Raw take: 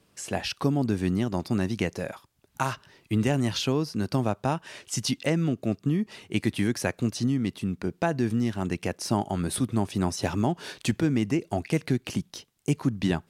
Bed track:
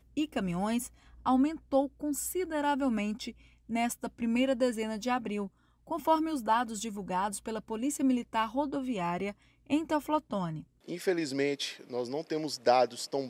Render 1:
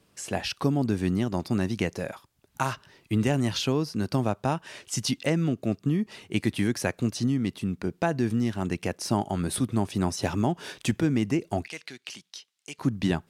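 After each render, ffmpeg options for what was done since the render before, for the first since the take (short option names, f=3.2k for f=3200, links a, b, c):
-filter_complex "[0:a]asettb=1/sr,asplit=3[a][b][c];[a]atrim=end=10.334[d];[b]atrim=start=10.33:end=11.13,asetpts=PTS-STARTPTS,afade=t=in:d=0.004:c=qsin,afade=t=out:st=0.796:d=0.004:c=qsin,bandreject=f=4.3k:w=12[e];[c]atrim=start=11.126[f];[d][e]acrossfade=d=0.004:c1=hsin:c2=qsin[g];[g][f]acrossfade=d=0.004:c1=qsin:c2=hsin,asettb=1/sr,asplit=3[h][i][j];[h]atrim=end=11.684[k];[i]atrim=start=11.68:end=12.79,asetpts=PTS-STARTPTS,afade=t=in:d=0.004:c=qsin,afade=t=out:st=1.106:d=0.004:c=qsin,bandpass=f=3.8k:t=q:w=0.75[l];[j]atrim=start=12.786[m];[k][l]acrossfade=d=0.004:c1=hsin:c2=qsin[n];[n][m]acrossfade=d=0.004:c1=qsin:c2=hsin"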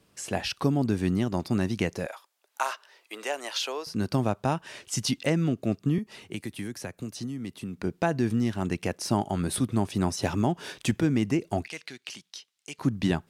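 -filter_complex "[0:a]asettb=1/sr,asplit=3[a][b][c];[a]atrim=end=2.064[d];[b]atrim=start=2.06:end=3.87,asetpts=PTS-STARTPTS,afade=t=in:d=0.004:c=qsin,afade=t=out:st=1.806:d=0.004:c=qsin,highpass=f=500:w=0.5412,highpass=f=500:w=1.3066[e];[c]atrim=start=3.866[f];[d][e]acrossfade=d=0.004:c1=hsin:c2=qsin[g];[g][f]acrossfade=d=0.004:c1=qsin:c2=hsin,asettb=1/sr,asplit=3[h][i][j];[h]atrim=end=5.984[k];[i]atrim=start=5.98:end=7.76,asetpts=PTS-STARTPTS,afade=t=in:d=0.004:c=qsin,afade=t=out:st=1.776:d=0.004:c=qsin,acrossover=split=210|7700[l][m][n];[l]acompressor=threshold=-40dB:ratio=4[o];[m]acompressor=threshold=-37dB:ratio=4[p];[n]acompressor=threshold=-48dB:ratio=4[q];[o][p][q]amix=inputs=3:normalize=0[r];[j]atrim=start=7.756[s];[k][r]acrossfade=d=0.004:c1=hsin:c2=qsin[t];[t][s]acrossfade=d=0.004:c1=qsin:c2=hsin"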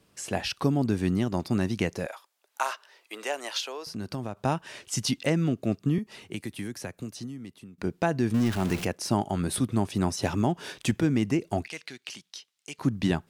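-filter_complex "[0:a]asettb=1/sr,asplit=3[a][b][c];[a]atrim=end=3.604[d];[b]atrim=start=3.6:end=4.37,asetpts=PTS-STARTPTS,afade=t=in:d=0.004:c=qsin,afade=t=out:st=0.766:d=0.004:c=qsin,acompressor=threshold=-35dB:ratio=2:attack=3.2:release=140:knee=1:detection=peak[e];[c]atrim=start=4.366[f];[d][e]acrossfade=d=0.004:c1=hsin:c2=qsin[g];[g][f]acrossfade=d=0.004:c1=qsin:c2=hsin,asettb=1/sr,asplit=3[h][i][j];[h]atrim=end=8.344[k];[i]atrim=start=8.34:end=8.85,asetpts=PTS-STARTPTS,afade=t=in:d=0.004:c=qsin,afade=t=out:st=0.506:d=0.004:c=qsin,aeval=exprs='val(0)+0.5*0.0299*sgn(val(0))':c=same[l];[j]atrim=start=8.846[m];[k][l]acrossfade=d=0.004:c1=hsin:c2=qsin[n];[n][m]acrossfade=d=0.004:c1=qsin:c2=hsin,asplit=2[o][p];[o]atrim=end=7.78,asetpts=PTS-STARTPTS,afade=t=out:st=6.95:d=0.83:silence=0.188365[q];[p]atrim=start=7.78,asetpts=PTS-STARTPTS,afade=t=in:d=0.004:c=hsin:silence=0.188365[r];[q][r]concat=n=2:v=0:a=1"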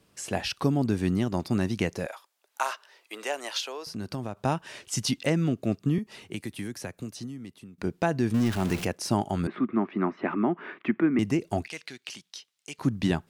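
-filter_complex "[0:a]asettb=1/sr,asplit=3[a][b][c];[a]atrim=end=9.474[d];[b]atrim=start=9.47:end=11.19,asetpts=PTS-STARTPTS,afade=t=in:d=0.004:c=qsin,afade=t=out:st=1.716:d=0.004:c=qsin,highpass=f=200:w=0.5412,highpass=f=200:w=1.3066,equalizer=f=220:t=q:w=4:g=3,equalizer=f=350:t=q:w=4:g=5,equalizer=f=500:t=q:w=4:g=-7,equalizer=f=830:t=q:w=4:g=-3,equalizer=f=1.2k:t=q:w=4:g=8,equalizer=f=2.1k:t=q:w=4:g=6,lowpass=f=2.2k:w=0.5412,lowpass=f=2.2k:w=1.3066[e];[c]atrim=start=11.186[f];[d][e]acrossfade=d=0.004:c1=hsin:c2=qsin[g];[g][f]acrossfade=d=0.004:c1=qsin:c2=hsin"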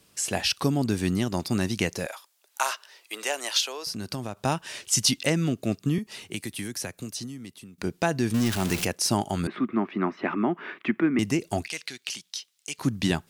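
-af "highshelf=f=2.7k:g=10.5"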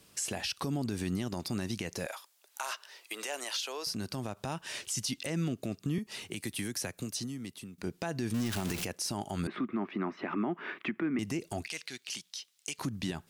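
-af "acompressor=threshold=-36dB:ratio=1.5,alimiter=limit=-24dB:level=0:latency=1:release=62"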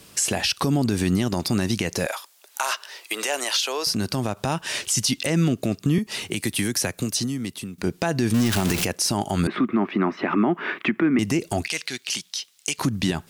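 -af "volume=12dB"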